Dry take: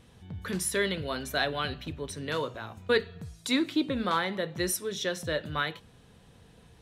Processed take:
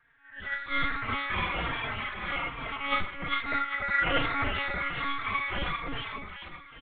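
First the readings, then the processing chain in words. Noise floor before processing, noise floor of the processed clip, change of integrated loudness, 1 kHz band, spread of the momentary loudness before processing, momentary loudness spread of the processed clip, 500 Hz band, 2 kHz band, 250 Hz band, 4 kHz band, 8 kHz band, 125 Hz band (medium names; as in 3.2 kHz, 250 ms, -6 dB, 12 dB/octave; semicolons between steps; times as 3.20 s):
-57 dBFS, -51 dBFS, +0.5 dB, +4.5 dB, 10 LU, 11 LU, -8.5 dB, +5.0 dB, -7.5 dB, -1.5 dB, under -40 dB, -2.0 dB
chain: phase randomisation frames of 200 ms; spectral noise reduction 8 dB; ring modulator 1.7 kHz; distance through air 260 m; two-band feedback delay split 870 Hz, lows 298 ms, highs 399 ms, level -4 dB; monotone LPC vocoder at 8 kHz 280 Hz; endless flanger 3.8 ms -1.2 Hz; trim +7.5 dB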